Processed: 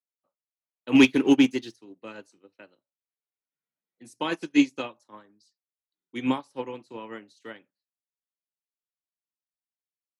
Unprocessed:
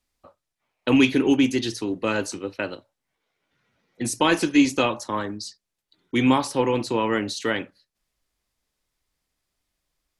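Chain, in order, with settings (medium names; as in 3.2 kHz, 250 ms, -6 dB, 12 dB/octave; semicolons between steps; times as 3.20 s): high-pass 130 Hz 24 dB/octave; 0.95–1.76 s: waveshaping leveller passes 1; upward expansion 2.5:1, over -31 dBFS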